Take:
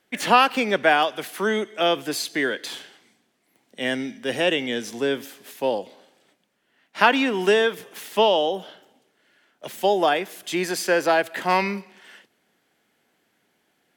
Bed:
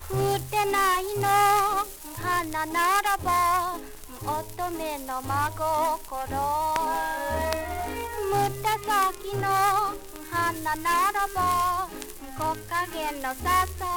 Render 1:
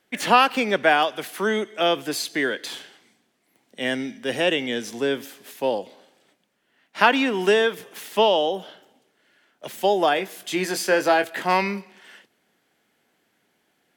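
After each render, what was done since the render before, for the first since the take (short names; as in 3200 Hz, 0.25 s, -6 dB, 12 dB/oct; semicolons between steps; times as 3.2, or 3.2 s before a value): 10.15–11.42 doubler 21 ms -9 dB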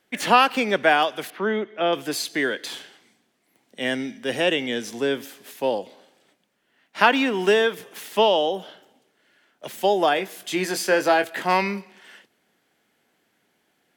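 1.3–1.93 air absorption 310 m; 7.13–7.66 median filter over 3 samples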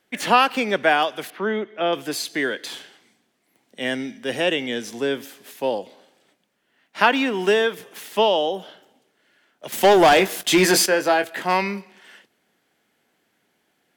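9.72–10.86 sample leveller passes 3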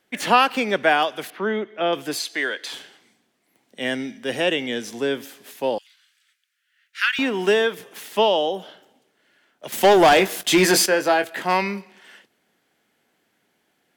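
2.19–2.73 weighting filter A; 5.78–7.19 steep high-pass 1400 Hz 48 dB/oct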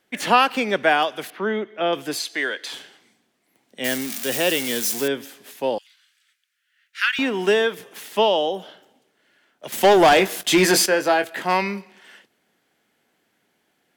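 3.84–5.08 switching spikes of -16.5 dBFS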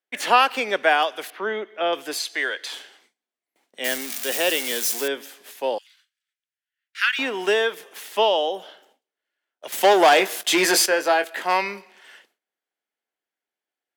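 gate with hold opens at -45 dBFS; HPF 410 Hz 12 dB/oct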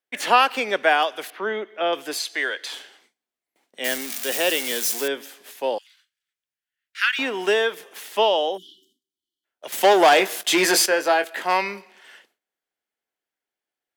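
8.57–9.45 spectral delete 390–2900 Hz; low shelf 160 Hz +3 dB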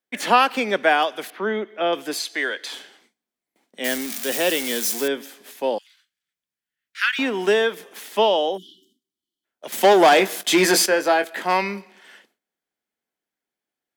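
bell 200 Hz +9 dB 1.3 oct; notch 2800 Hz, Q 27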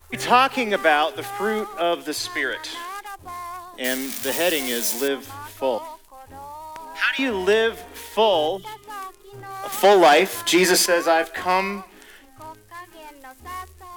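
add bed -11.5 dB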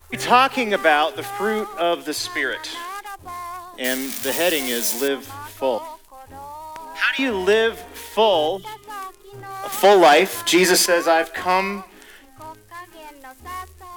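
gain +1.5 dB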